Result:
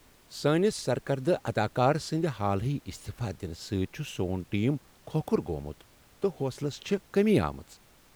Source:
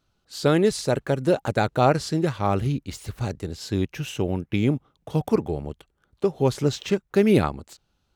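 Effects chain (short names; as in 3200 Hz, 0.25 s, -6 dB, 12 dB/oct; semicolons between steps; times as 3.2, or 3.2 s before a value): 6.31–6.87 compressor 2:1, threshold -25 dBFS, peak gain reduction 6 dB; added noise pink -53 dBFS; gain -5.5 dB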